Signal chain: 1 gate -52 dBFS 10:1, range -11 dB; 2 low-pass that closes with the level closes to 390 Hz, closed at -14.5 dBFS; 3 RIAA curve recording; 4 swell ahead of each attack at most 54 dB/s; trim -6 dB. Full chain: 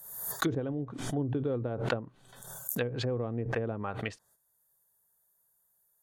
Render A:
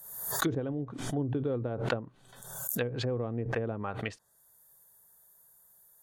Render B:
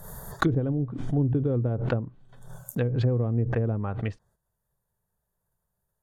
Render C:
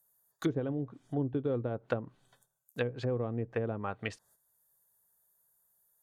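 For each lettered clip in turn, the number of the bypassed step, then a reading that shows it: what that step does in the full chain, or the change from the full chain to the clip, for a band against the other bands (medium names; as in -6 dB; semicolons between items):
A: 1, 8 kHz band +3.0 dB; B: 3, 125 Hz band +7.5 dB; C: 4, crest factor change -6.0 dB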